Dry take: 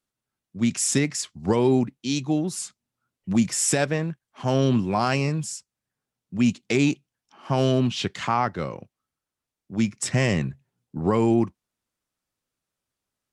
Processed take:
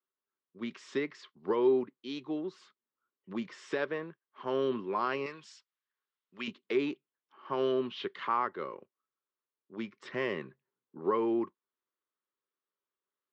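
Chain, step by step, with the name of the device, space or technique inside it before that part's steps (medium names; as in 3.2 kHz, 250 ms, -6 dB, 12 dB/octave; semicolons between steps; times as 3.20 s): 5.26–6.48 s: tilt shelf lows -9.5 dB; phone earpiece (cabinet simulation 390–3400 Hz, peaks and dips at 390 Hz +8 dB, 720 Hz -10 dB, 1.1 kHz +6 dB, 2.5 kHz -6 dB); trim -7.5 dB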